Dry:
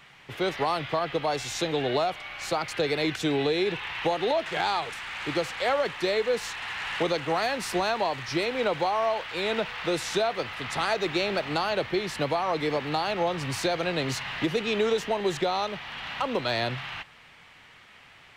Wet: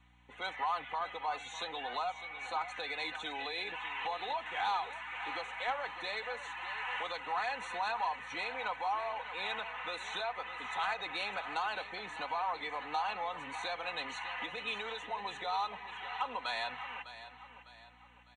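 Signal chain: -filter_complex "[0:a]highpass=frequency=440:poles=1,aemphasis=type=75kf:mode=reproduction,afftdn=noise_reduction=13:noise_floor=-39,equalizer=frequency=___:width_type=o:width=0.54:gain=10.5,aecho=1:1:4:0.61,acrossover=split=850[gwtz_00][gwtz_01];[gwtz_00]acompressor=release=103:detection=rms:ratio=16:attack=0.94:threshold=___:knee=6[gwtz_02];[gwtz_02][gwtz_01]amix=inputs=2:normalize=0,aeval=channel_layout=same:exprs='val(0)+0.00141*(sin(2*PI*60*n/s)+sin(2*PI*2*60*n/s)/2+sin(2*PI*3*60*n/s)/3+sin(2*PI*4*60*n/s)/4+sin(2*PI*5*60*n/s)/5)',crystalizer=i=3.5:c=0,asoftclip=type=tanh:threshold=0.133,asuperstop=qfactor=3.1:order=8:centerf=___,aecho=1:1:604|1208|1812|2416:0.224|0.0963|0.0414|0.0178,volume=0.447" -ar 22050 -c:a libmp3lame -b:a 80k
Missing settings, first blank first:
890, 0.0126, 5000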